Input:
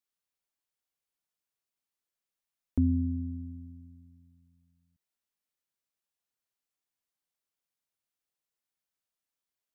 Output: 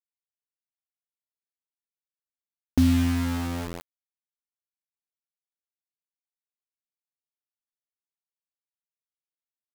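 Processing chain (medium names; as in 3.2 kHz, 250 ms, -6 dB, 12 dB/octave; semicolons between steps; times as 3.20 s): median filter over 41 samples; high-pass 65 Hz 6 dB/octave; hum notches 50/100 Hz; in parallel at +3 dB: compression 4:1, threshold -38 dBFS, peak gain reduction 13 dB; on the sum: word length cut 6-bit, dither none; trim +4.5 dB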